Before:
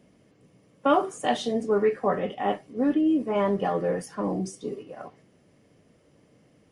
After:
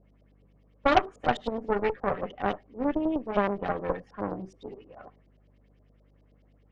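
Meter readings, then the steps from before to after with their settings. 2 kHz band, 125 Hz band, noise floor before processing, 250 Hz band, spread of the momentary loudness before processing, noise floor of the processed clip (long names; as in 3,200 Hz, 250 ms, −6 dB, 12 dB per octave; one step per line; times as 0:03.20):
+2.5 dB, −3.5 dB, −61 dBFS, −5.5 dB, 13 LU, −62 dBFS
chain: auto-filter low-pass saw up 9.5 Hz 500–4,700 Hz
mains hum 50 Hz, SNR 26 dB
harmonic generator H 3 −18 dB, 6 −14 dB, 7 −30 dB, 8 −23 dB, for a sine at −5.5 dBFS
level −2 dB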